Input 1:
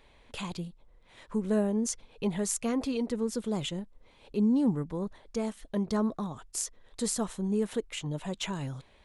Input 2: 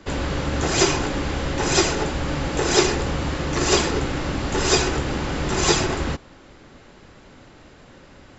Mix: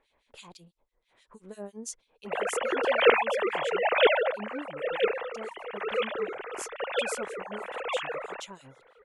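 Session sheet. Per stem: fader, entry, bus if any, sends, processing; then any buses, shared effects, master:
−5.5 dB, 0.00 s, no send, bass and treble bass −11 dB, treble +2 dB; two-band tremolo in antiphase 6.1 Hz, depth 100%, crossover 2,100 Hz
0:04.12 −2.5 dB → 0:04.58 −11.5 dB, 2.25 s, no send, three sine waves on the formant tracks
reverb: not used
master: no processing

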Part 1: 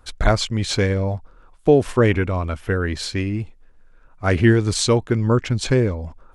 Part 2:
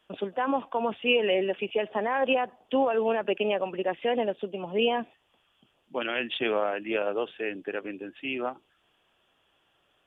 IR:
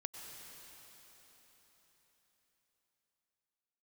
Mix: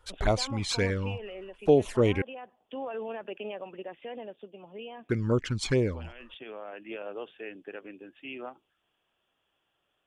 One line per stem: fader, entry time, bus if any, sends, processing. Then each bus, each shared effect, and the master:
−3.5 dB, 0.00 s, muted 0:02.22–0:05.09, no send, low-shelf EQ 260 Hz −7.5 dB; flanger swept by the level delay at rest 2.2 ms, full sweep at −15.5 dBFS
−8.5 dB, 0.00 s, no send, brickwall limiter −20 dBFS, peak gain reduction 7 dB; automatic ducking −7 dB, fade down 1.60 s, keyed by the first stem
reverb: not used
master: no processing

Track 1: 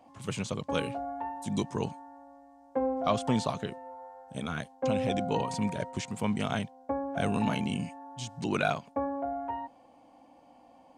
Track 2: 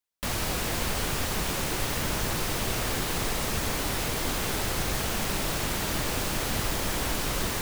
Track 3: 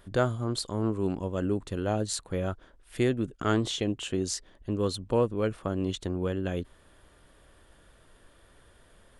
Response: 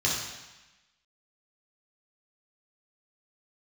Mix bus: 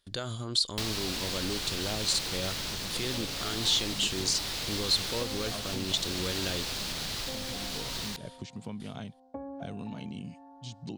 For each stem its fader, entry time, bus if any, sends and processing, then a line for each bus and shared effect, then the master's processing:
−8.5 dB, 2.45 s, bus A, no send, tilt shelving filter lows +7 dB, about 840 Hz
−4.5 dB, 0.55 s, bus A, no send, no processing
−3.5 dB, 0.00 s, no bus, no send, noise gate with hold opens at −46 dBFS; high-shelf EQ 3,000 Hz +9.5 dB; brickwall limiter −23 dBFS, peak gain reduction 17.5 dB
bus A: 0.0 dB, downward compressor, threshold −36 dBFS, peak gain reduction 11 dB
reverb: not used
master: parametric band 4,200 Hz +14 dB 1.3 octaves

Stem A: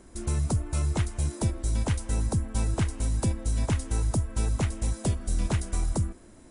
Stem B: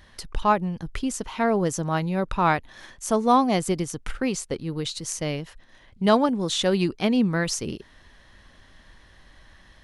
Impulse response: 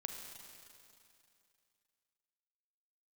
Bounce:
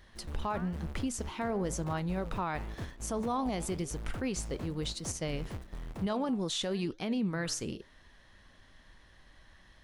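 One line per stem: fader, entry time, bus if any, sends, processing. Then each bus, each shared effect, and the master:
−19.5 dB, 0.00 s, no send, each half-wave held at its own peak; high-shelf EQ 4,700 Hz −8 dB
−2.0 dB, 0.00 s, no send, flanger 1 Hz, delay 4 ms, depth 8.4 ms, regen −87%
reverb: not used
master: brickwall limiter −24.5 dBFS, peak gain reduction 12 dB

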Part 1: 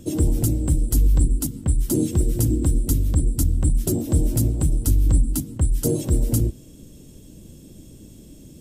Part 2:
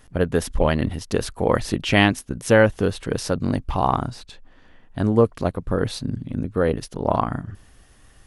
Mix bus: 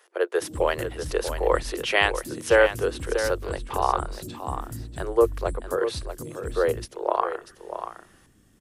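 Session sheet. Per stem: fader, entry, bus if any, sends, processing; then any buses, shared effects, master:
−16.0 dB, 0.35 s, no send, no echo send, notch on a step sequencer 11 Hz 780–2,600 Hz
−0.5 dB, 0.00 s, no send, echo send −9.5 dB, Chebyshev high-pass with heavy ripple 340 Hz, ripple 3 dB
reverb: not used
echo: single-tap delay 640 ms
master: no processing

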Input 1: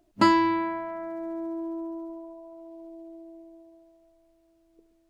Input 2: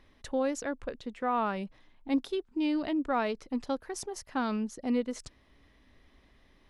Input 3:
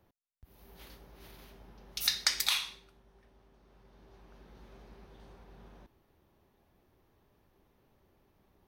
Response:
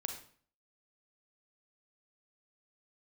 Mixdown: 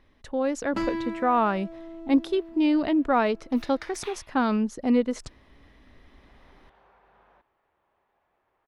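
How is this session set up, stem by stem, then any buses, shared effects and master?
−17.0 dB, 0.55 s, no send, notch filter 1,000 Hz, Q 22; leveller curve on the samples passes 2; automatic ducking −6 dB, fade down 1.85 s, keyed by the second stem
0.0 dB, 0.00 s, no send, no processing
0:06.18 −11.5 dB → 0:06.44 −3 dB, 1.55 s, no send, three-way crossover with the lows and the highs turned down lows −20 dB, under 580 Hz, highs −19 dB, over 2,800 Hz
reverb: not used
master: high-shelf EQ 3,700 Hz −6.5 dB; automatic gain control gain up to 7.5 dB

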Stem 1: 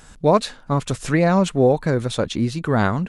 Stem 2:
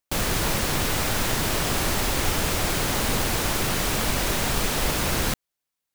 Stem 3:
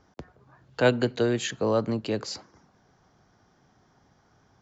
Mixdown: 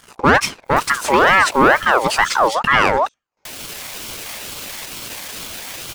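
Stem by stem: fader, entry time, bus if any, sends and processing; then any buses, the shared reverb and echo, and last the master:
+1.0 dB, 0.00 s, no bus, no send, no echo send, no processing
0.0 dB, 0.65 s, muted 0:02.48–0:03.45, bus A, no send, no echo send, high-pass filter 970 Hz 24 dB per octave; brickwall limiter −21 dBFS, peak gain reduction 6.5 dB; upward compression, threshold −40 dBFS; automatic ducking −11 dB, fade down 1.20 s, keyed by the first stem
0.0 dB, 0.00 s, bus A, no send, echo send −23.5 dB, compressor whose output falls as the input rises −31 dBFS, ratio −0.5; parametric band 550 Hz −9.5 dB 1.3 octaves; noise gate with hold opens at −47 dBFS
bus A: 0.0 dB, downward compressor 2 to 1, threshold −38 dBFS, peak gain reduction 8 dB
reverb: not used
echo: single-tap delay 780 ms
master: leveller curve on the samples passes 3; notch comb filter 1,100 Hz; ring modulator whose carrier an LFO sweeps 1,100 Hz, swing 40%, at 2.2 Hz

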